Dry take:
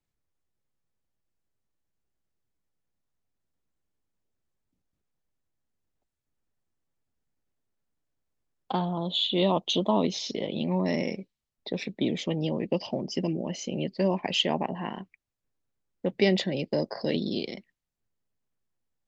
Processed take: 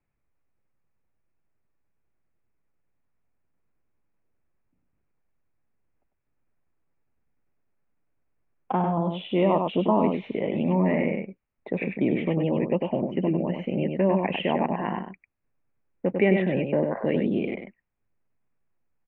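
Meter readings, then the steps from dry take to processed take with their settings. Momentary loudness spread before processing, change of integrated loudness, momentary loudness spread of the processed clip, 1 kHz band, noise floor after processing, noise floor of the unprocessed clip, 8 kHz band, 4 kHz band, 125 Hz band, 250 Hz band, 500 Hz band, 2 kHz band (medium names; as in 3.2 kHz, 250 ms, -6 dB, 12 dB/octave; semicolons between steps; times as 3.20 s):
10 LU, +3.0 dB, 9 LU, +4.5 dB, -77 dBFS, -85 dBFS, no reading, -11.0 dB, +4.0 dB, +4.5 dB, +4.0 dB, +3.5 dB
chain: delay 98 ms -6 dB; in parallel at -1 dB: peak limiter -20 dBFS, peak gain reduction 10.5 dB; on the sum: elliptic low-pass 2.5 kHz, stop band 50 dB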